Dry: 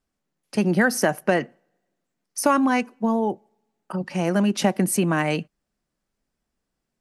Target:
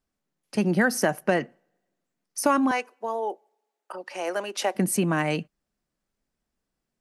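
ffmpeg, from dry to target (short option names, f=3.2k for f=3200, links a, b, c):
-filter_complex "[0:a]asettb=1/sr,asplit=3[a][b][c];[a]atrim=end=2.714[d];[b]atrim=start=2.71:end=4.75,asetpts=PTS-STARTPTS,afade=t=in:d=0.004:c=qsin,afade=t=out:st=2.036:d=0.004:c=qsin,highpass=f=410:w=0.5412,highpass=f=410:w=1.3066[e];[c]atrim=start=4.746[f];[d][e]acrossfade=d=0.004:c1=hsin:c2=qsin[g];[g][f]acrossfade=d=0.004:c1=qsin:c2=hsin,volume=-2.5dB"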